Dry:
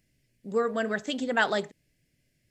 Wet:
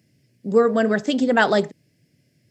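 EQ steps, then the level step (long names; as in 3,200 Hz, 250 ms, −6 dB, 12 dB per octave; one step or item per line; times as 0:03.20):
high-pass filter 99 Hz 24 dB per octave
tilt shelving filter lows +4.5 dB, about 830 Hz
parametric band 5,100 Hz +6.5 dB 0.34 octaves
+8.0 dB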